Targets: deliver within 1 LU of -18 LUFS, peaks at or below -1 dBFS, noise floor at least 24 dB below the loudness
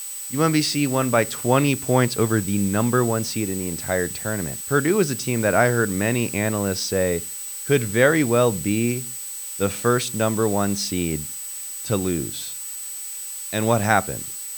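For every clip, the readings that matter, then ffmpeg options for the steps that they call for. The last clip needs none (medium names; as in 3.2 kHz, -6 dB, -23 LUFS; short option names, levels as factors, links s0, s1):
steady tone 8 kHz; tone level -32 dBFS; noise floor -33 dBFS; noise floor target -46 dBFS; loudness -22.0 LUFS; peak level -2.0 dBFS; loudness target -18.0 LUFS
-> -af "bandreject=f=8000:w=30"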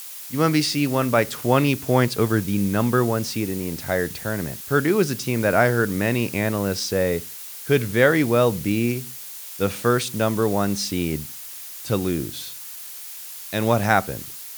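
steady tone not found; noise floor -37 dBFS; noise floor target -46 dBFS
-> -af "afftdn=nr=9:nf=-37"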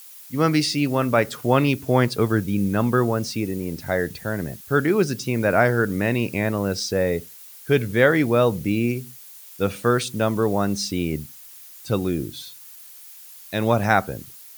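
noise floor -44 dBFS; noise floor target -46 dBFS
-> -af "afftdn=nr=6:nf=-44"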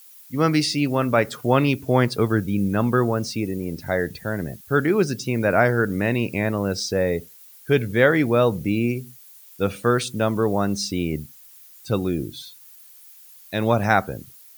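noise floor -48 dBFS; loudness -22.0 LUFS; peak level -2.5 dBFS; loudness target -18.0 LUFS
-> -af "volume=1.58,alimiter=limit=0.891:level=0:latency=1"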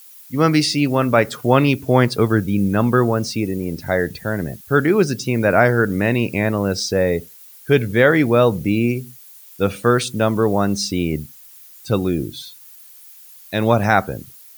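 loudness -18.5 LUFS; peak level -1.0 dBFS; noise floor -44 dBFS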